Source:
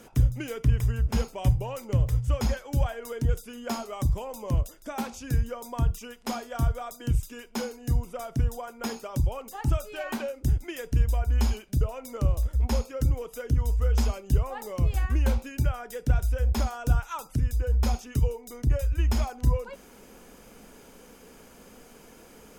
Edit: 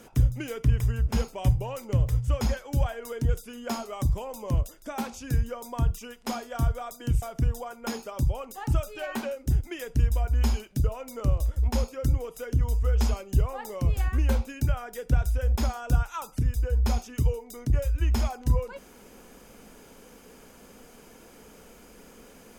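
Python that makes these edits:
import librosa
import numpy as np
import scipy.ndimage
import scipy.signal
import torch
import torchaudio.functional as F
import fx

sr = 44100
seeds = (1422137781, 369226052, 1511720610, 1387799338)

y = fx.edit(x, sr, fx.cut(start_s=7.22, length_s=0.97), tone=tone)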